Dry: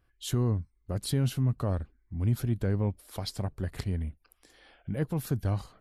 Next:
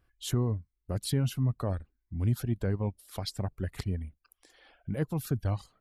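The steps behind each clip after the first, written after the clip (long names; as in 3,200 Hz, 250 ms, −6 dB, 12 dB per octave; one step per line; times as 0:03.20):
reverb reduction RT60 1 s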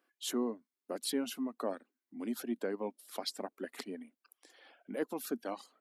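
elliptic high-pass filter 240 Hz, stop band 50 dB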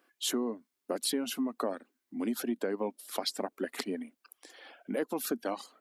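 downward compressor, threshold −36 dBFS, peak gain reduction 7.5 dB
level +8 dB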